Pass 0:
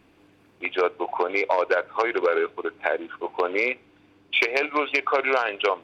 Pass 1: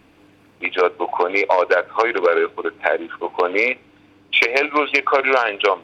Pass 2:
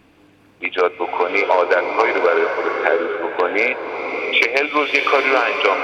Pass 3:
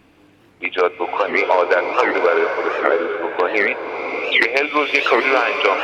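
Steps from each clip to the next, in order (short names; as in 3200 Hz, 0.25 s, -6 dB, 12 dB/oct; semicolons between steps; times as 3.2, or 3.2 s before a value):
notch 370 Hz, Q 12; gain +6 dB
bloom reverb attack 0.72 s, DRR 3.5 dB
record warp 78 rpm, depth 250 cents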